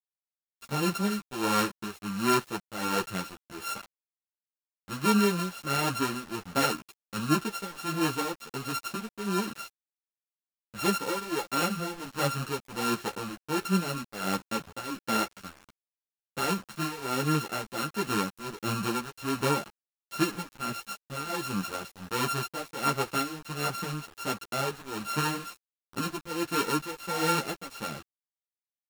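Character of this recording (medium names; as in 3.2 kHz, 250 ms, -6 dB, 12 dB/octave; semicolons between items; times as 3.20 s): a buzz of ramps at a fixed pitch in blocks of 32 samples; tremolo triangle 1.4 Hz, depth 90%; a quantiser's noise floor 8-bit, dither none; a shimmering, thickened sound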